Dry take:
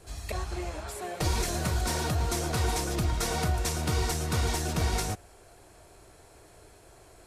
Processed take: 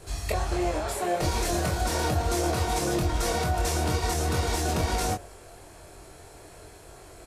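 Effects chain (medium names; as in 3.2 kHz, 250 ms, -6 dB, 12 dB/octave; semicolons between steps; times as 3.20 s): dynamic bell 540 Hz, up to +5 dB, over -48 dBFS, Q 0.87; peak limiter -24 dBFS, peak gain reduction 9 dB; doubling 23 ms -4 dB; trim +5 dB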